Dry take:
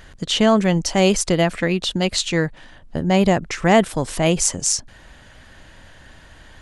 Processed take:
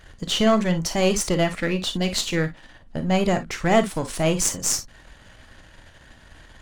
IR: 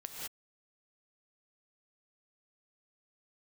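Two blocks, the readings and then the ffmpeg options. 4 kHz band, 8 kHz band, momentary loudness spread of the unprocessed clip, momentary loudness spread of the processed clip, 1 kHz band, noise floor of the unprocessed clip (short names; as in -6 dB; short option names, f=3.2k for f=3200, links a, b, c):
-3.5 dB, -3.0 dB, 7 LU, 7 LU, -4.0 dB, -46 dBFS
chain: -filter_complex "[0:a]aeval=exprs='if(lt(val(0),0),0.447*val(0),val(0))':c=same[a];[1:a]atrim=start_sample=2205,afade=t=out:st=0.15:d=0.01,atrim=end_sample=7056,asetrate=74970,aresample=44100[b];[a][b]afir=irnorm=-1:irlink=0,volume=8.5dB"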